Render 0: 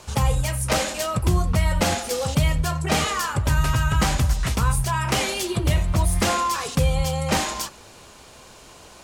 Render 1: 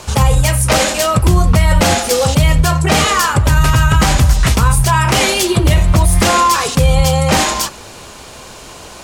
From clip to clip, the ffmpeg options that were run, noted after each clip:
ffmpeg -i in.wav -af "alimiter=level_in=13dB:limit=-1dB:release=50:level=0:latency=1,volume=-1dB" out.wav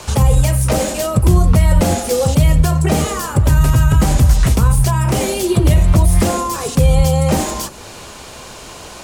ffmpeg -i in.wav -filter_complex "[0:a]acrossover=split=280|660|7500[link_01][link_02][link_03][link_04];[link_03]acompressor=threshold=-27dB:ratio=6[link_05];[link_04]asoftclip=type=hard:threshold=-25.5dB[link_06];[link_01][link_02][link_05][link_06]amix=inputs=4:normalize=0" out.wav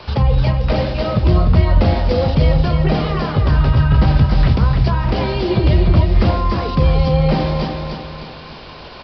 ffmpeg -i in.wav -filter_complex "[0:a]asplit=2[link_01][link_02];[link_02]aecho=0:1:301|602|903|1204|1505|1806:0.596|0.268|0.121|0.0543|0.0244|0.011[link_03];[link_01][link_03]amix=inputs=2:normalize=0,aresample=11025,aresample=44100,volume=-2.5dB" out.wav

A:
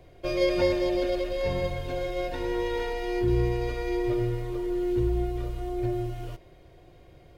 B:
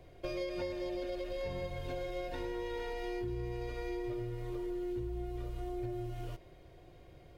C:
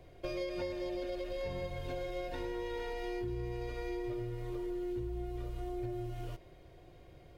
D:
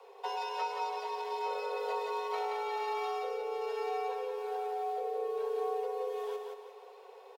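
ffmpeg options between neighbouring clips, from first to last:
ffmpeg -i in.wav -af "acompressor=threshold=-32dB:ratio=6,volume=-3.5dB" out.wav
ffmpeg -i in.wav -af anull out.wav
ffmpeg -i in.wav -af "afreqshift=390,aecho=1:1:176|352|528|704|880:0.596|0.226|0.086|0.0327|0.0124,volume=1.5dB" out.wav

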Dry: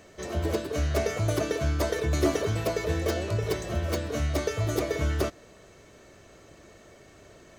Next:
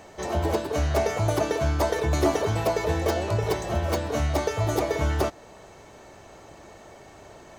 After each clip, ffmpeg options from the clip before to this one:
ffmpeg -i in.wav -filter_complex "[0:a]equalizer=frequency=850:width_type=o:width=0.51:gain=12.5,asplit=2[link_01][link_02];[link_02]alimiter=limit=-19.5dB:level=0:latency=1:release=374,volume=-2dB[link_03];[link_01][link_03]amix=inputs=2:normalize=0,volume=-2dB" out.wav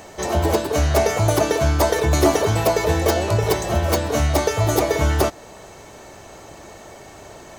ffmpeg -i in.wav -af "highshelf=frequency=6200:gain=7.5,volume=6dB" out.wav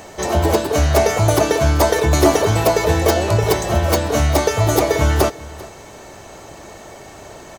ffmpeg -i in.wav -af "aecho=1:1:394:0.1,volume=3dB" out.wav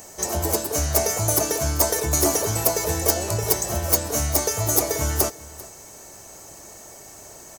ffmpeg -i in.wav -af "aexciter=amount=6.3:drive=2.9:freq=5100,volume=-9.5dB" out.wav

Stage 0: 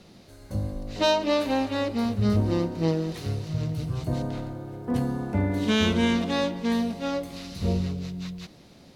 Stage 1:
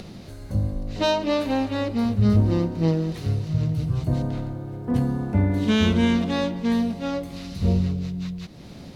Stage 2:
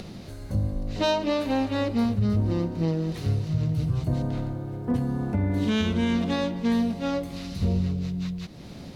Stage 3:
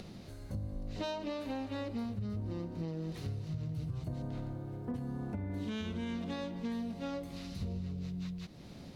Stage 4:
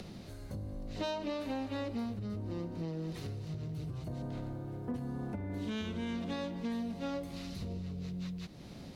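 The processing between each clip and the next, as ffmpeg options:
ffmpeg -i in.wav -af "bass=frequency=250:gain=6,treble=frequency=4000:gain=-2,acompressor=mode=upward:threshold=-31dB:ratio=2.5" out.wav
ffmpeg -i in.wav -af "alimiter=limit=-15.5dB:level=0:latency=1:release=319" out.wav
ffmpeg -i in.wav -af "acompressor=threshold=-26dB:ratio=6,volume=-8.5dB" out.wav
ffmpeg -i in.wav -filter_complex "[0:a]acrossover=split=220|1200|1600[link_01][link_02][link_03][link_04];[link_01]asoftclip=type=tanh:threshold=-39.5dB[link_05];[link_05][link_02][link_03][link_04]amix=inputs=4:normalize=0,volume=2dB" -ar 44100 -c:a libmp3lame -b:a 80k out.mp3

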